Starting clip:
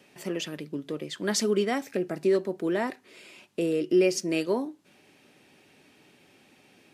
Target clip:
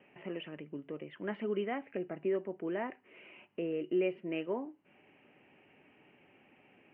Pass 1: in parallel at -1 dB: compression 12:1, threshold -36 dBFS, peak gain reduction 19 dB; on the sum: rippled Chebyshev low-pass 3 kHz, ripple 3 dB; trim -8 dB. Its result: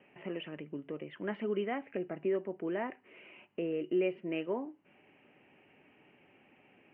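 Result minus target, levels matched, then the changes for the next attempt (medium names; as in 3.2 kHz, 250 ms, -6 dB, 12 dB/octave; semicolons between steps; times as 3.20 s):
compression: peak gain reduction -7 dB
change: compression 12:1, threshold -43.5 dBFS, peak gain reduction 26 dB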